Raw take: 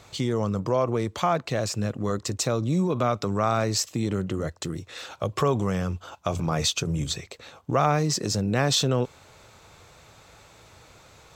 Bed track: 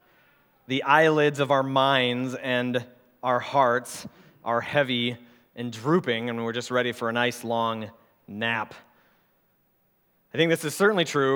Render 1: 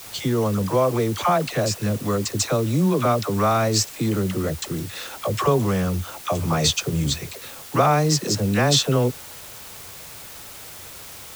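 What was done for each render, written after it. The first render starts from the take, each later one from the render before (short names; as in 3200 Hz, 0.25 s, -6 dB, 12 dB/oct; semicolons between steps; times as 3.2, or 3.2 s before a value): dispersion lows, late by 62 ms, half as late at 690 Hz; in parallel at -4 dB: requantised 6-bit, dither triangular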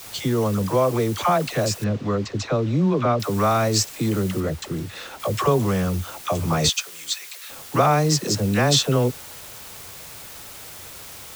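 1.84–3.2 air absorption 170 m; 4.4–5.2 high shelf 4500 Hz -8 dB; 6.69–7.5 HPF 1300 Hz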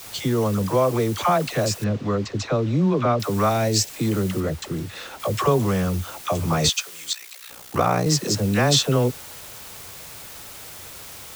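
3.49–3.9 bell 1200 Hz -13.5 dB 0.38 oct; 7.12–8.07 ring modulator 30 Hz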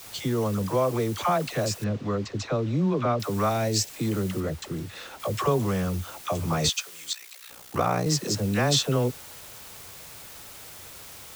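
gain -4.5 dB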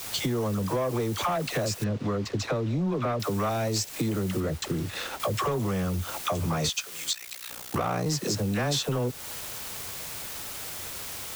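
sample leveller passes 2; compressor 5:1, threshold -26 dBFS, peak gain reduction 10.5 dB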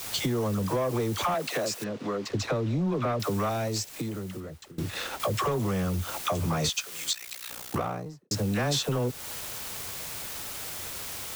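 1.34–2.3 HPF 250 Hz; 3.33–4.78 fade out, to -22 dB; 7.64–8.31 studio fade out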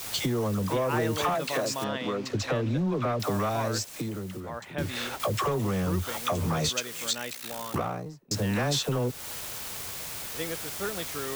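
add bed track -13.5 dB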